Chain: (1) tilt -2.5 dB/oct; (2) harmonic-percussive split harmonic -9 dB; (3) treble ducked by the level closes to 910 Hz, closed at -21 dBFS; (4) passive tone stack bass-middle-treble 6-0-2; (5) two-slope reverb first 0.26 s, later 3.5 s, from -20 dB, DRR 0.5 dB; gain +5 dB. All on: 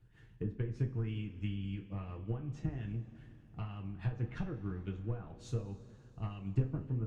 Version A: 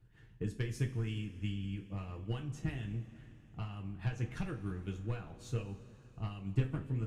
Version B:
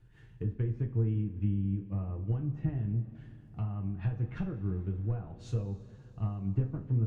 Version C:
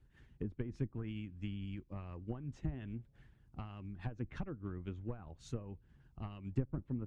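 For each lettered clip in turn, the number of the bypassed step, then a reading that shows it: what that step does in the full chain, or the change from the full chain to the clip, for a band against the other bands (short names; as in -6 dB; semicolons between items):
3, 4 kHz band +5.5 dB; 2, 2 kHz band -6.0 dB; 5, crest factor change +2.5 dB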